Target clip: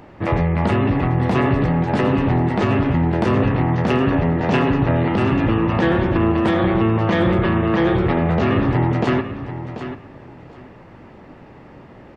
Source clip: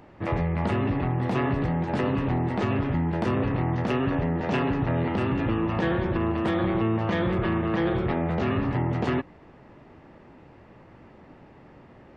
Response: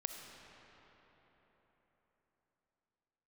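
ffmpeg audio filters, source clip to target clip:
-af "aecho=1:1:737|1474:0.282|0.0507,volume=7.5dB"

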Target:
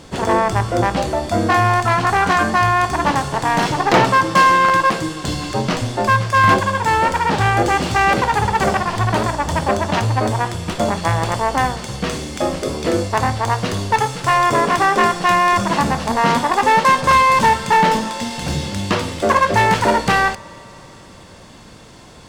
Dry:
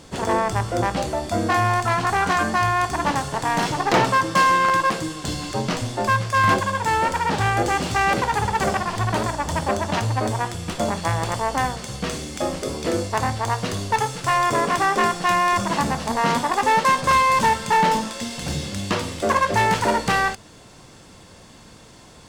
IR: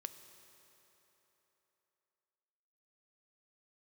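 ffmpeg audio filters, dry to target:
-filter_complex "[0:a]asplit=2[a][b];[1:a]atrim=start_sample=2205,lowpass=5.7k[c];[b][c]afir=irnorm=-1:irlink=0,volume=-4dB[d];[a][d]amix=inputs=2:normalize=0,volume=2dB"

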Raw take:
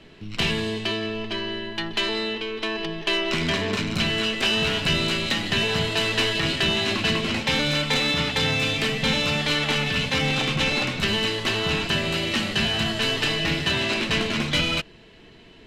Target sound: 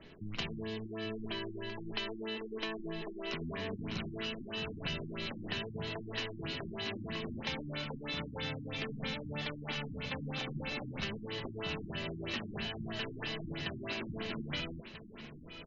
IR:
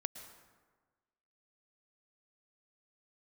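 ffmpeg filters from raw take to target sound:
-filter_complex "[0:a]acompressor=threshold=-29dB:ratio=6,asplit=2[a][b];[b]aecho=0:1:843:0.266[c];[a][c]amix=inputs=2:normalize=0,afftfilt=real='re*lt(b*sr/1024,330*pow(7300/330,0.5+0.5*sin(2*PI*3.1*pts/sr)))':imag='im*lt(b*sr/1024,330*pow(7300/330,0.5+0.5*sin(2*PI*3.1*pts/sr)))':win_size=1024:overlap=0.75,volume=-6dB"

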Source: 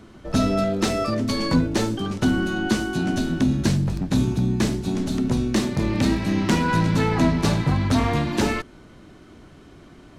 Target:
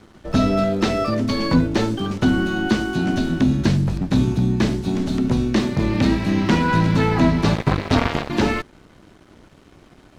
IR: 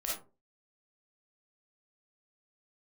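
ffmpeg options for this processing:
-filter_complex "[0:a]asettb=1/sr,asplit=3[a][b][c];[a]atrim=end=7.554[d];[b]atrim=start=7.55:end=8.3,asetpts=PTS-STARTPTS,afade=t=in:d=0.004:c=qsin,afade=t=out:st=0.746:d=0.004:c=qsin,aeval=exprs='0.447*(cos(1*acos(clip(val(0)/0.447,-1,1)))-cos(1*PI/2))+0.0891*(cos(7*acos(clip(val(0)/0.447,-1,1)))-cos(7*PI/2))':c=same[e];[c]atrim=start=8.296[f];[d][e]acrossfade=d=0.004:c1=hsin:c2=qsin[g];[g][f]acrossfade=d=0.004:c1=qsin:c2=hsin,acrossover=split=5200[h][i];[i]acompressor=threshold=-50dB:ratio=4:attack=1:release=60[j];[h][j]amix=inputs=2:normalize=0,aeval=exprs='sgn(val(0))*max(abs(val(0))-0.00316,0)':c=same,volume=3dB"

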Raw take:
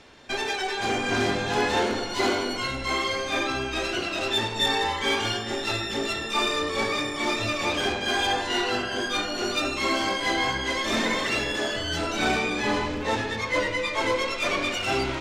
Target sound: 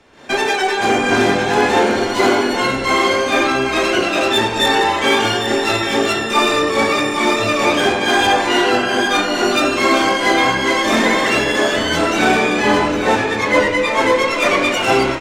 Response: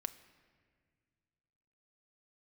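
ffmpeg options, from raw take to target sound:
-filter_complex "[0:a]equalizer=f=4.3k:t=o:w=1.5:g=-6,acrossover=split=130[a][b];[b]dynaudnorm=f=120:g=3:m=13dB[c];[a][c]amix=inputs=2:normalize=0,aecho=1:1:806:0.355"

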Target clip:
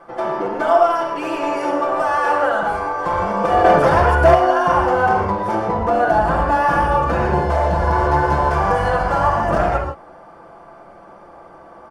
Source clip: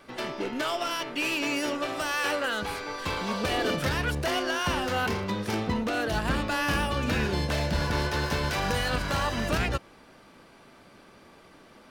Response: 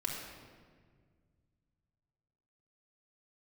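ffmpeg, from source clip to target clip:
-filter_complex "[0:a]firequalizer=gain_entry='entry(210,0);entry(720,13);entry(2500,-9)':delay=0.05:min_phase=1[a];[1:a]atrim=start_sample=2205,atrim=end_sample=3969,asetrate=22491,aresample=44100[b];[a][b]afir=irnorm=-1:irlink=0,asettb=1/sr,asplit=3[c][d][e];[c]atrim=end=3.644[f];[d]atrim=start=3.64:end=4.35,asetpts=PTS-STARTPTS,afade=t=in:d=0.004:c=qsin,afade=t=out:st=0.706:d=0.004:c=qsin,acontrast=38[g];[e]atrim=start=4.346[h];[f][g]acrossfade=d=0.004:c1=hsin:c2=qsin[i];[i][h]acrossfade=d=0.004:c1=qsin:c2=hsin,bandreject=f=3.9k:w=8.1,volume=-1.5dB"

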